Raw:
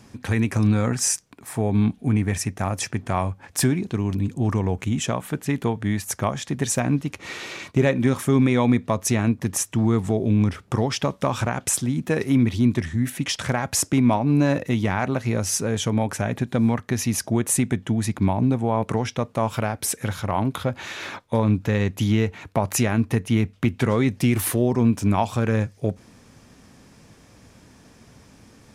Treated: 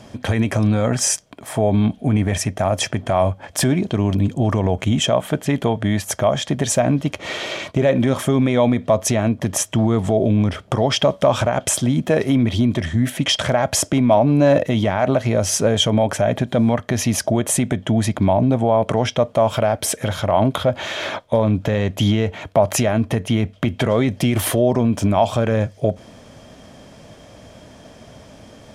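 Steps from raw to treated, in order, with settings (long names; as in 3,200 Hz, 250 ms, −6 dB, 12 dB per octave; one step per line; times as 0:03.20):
high-shelf EQ 9,700 Hz −7.5 dB
brickwall limiter −15 dBFS, peak gain reduction 9 dB
hollow resonant body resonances 620/3,200 Hz, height 13 dB, ringing for 25 ms
level +6 dB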